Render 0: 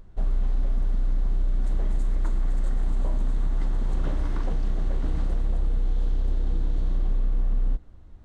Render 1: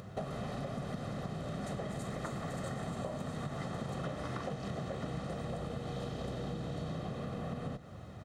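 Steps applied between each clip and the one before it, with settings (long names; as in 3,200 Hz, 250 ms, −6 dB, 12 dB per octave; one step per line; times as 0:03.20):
high-pass filter 120 Hz 24 dB per octave
comb filter 1.6 ms, depth 56%
downward compressor 10 to 1, threshold −47 dBFS, peak gain reduction 17 dB
level +11.5 dB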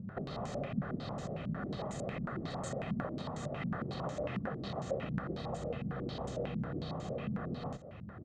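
low-pass on a step sequencer 11 Hz 210–7,000 Hz
level −2 dB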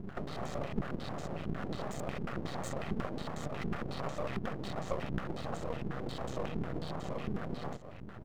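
half-wave rectification
level +4.5 dB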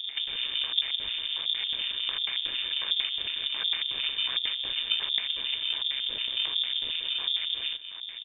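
voice inversion scrambler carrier 3,600 Hz
level +5.5 dB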